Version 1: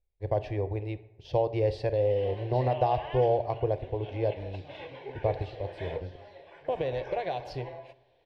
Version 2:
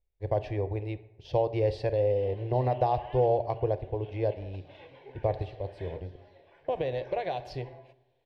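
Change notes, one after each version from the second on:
background −8.0 dB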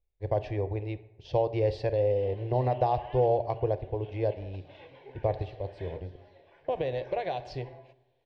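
master: add low-pass filter 7,900 Hz 24 dB per octave

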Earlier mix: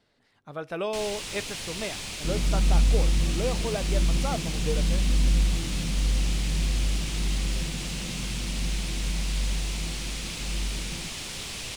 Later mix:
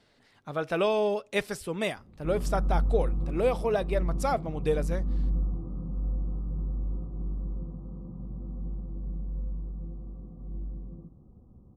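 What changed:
speech +4.5 dB
first sound: muted
second sound −5.5 dB

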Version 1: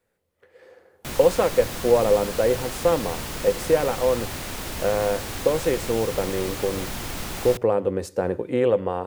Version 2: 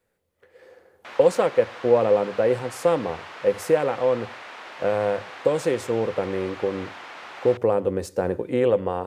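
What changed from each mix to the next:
background: add band-pass filter 750–2,300 Hz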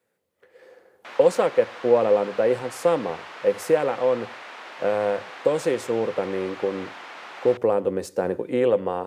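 master: add high-pass filter 150 Hz 12 dB per octave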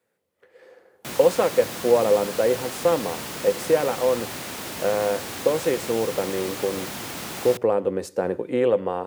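background: remove band-pass filter 750–2,300 Hz

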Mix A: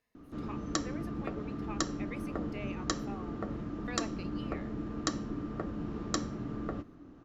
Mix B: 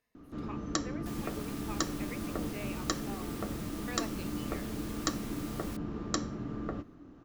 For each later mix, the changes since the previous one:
second sound: unmuted
master: add high-shelf EQ 10,000 Hz +3.5 dB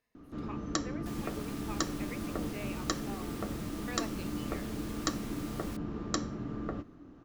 master: add high-shelf EQ 10,000 Hz −3.5 dB

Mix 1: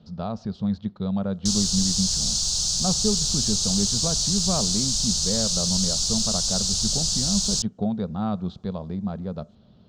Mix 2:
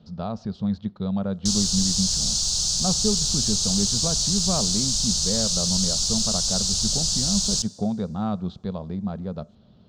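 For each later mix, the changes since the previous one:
reverb: on, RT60 2.2 s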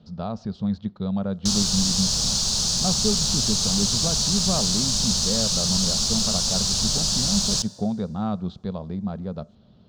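background: add graphic EQ with 10 bands 125 Hz +4 dB, 250 Hz +12 dB, 500 Hz +6 dB, 1,000 Hz +7 dB, 2,000 Hz +9 dB, 8,000 Hz −6 dB, 16,000 Hz +11 dB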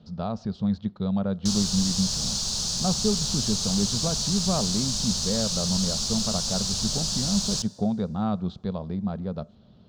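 background −5.0 dB

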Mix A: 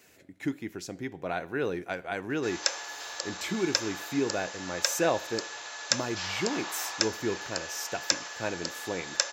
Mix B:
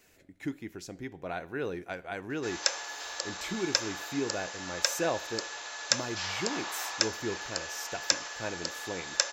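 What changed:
speech −4.0 dB
master: remove high-pass filter 92 Hz

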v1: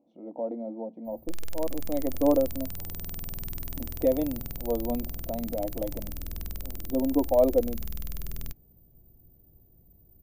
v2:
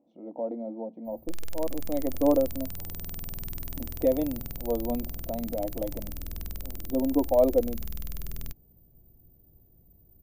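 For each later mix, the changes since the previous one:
reverb: off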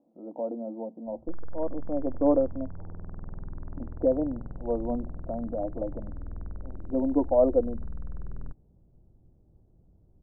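master: add Butterworth low-pass 1,500 Hz 48 dB per octave

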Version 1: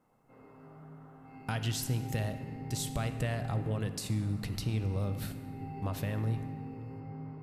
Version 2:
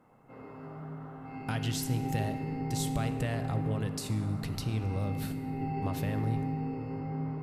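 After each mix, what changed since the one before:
background +8.5 dB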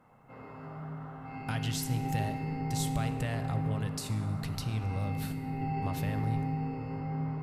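background +3.0 dB
master: add parametric band 340 Hz −7 dB 1.2 octaves

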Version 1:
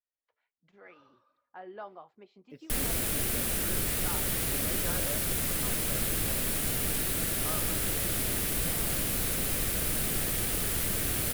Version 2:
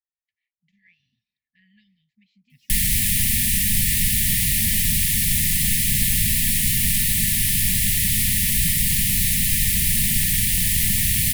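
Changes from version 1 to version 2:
background +11.0 dB
master: add linear-phase brick-wall band-stop 240–1,700 Hz

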